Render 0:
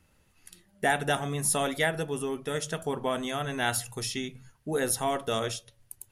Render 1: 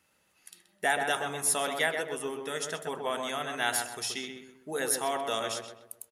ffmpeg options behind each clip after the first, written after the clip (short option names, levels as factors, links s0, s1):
-filter_complex "[0:a]highpass=f=650:p=1,asplit=2[s0][s1];[s1]adelay=128,lowpass=f=1700:p=1,volume=0.631,asplit=2[s2][s3];[s3]adelay=128,lowpass=f=1700:p=1,volume=0.43,asplit=2[s4][s5];[s5]adelay=128,lowpass=f=1700:p=1,volume=0.43,asplit=2[s6][s7];[s7]adelay=128,lowpass=f=1700:p=1,volume=0.43,asplit=2[s8][s9];[s9]adelay=128,lowpass=f=1700:p=1,volume=0.43[s10];[s2][s4][s6][s8][s10]amix=inputs=5:normalize=0[s11];[s0][s11]amix=inputs=2:normalize=0"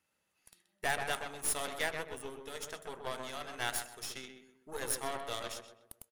-af "aeval=exprs='0.224*(cos(1*acos(clip(val(0)/0.224,-1,1)))-cos(1*PI/2))+0.0126*(cos(7*acos(clip(val(0)/0.224,-1,1)))-cos(7*PI/2))+0.0224*(cos(8*acos(clip(val(0)/0.224,-1,1)))-cos(8*PI/2))':c=same,volume=0.501"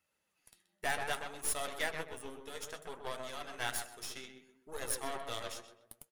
-af "flanger=delay=1.5:depth=10:regen=53:speed=0.62:shape=sinusoidal,volume=1.33"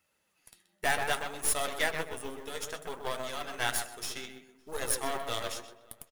-filter_complex "[0:a]asplit=2[s0][s1];[s1]adelay=559.8,volume=0.0501,highshelf=f=4000:g=-12.6[s2];[s0][s2]amix=inputs=2:normalize=0,acrusher=bits=5:mode=log:mix=0:aa=0.000001,volume=2"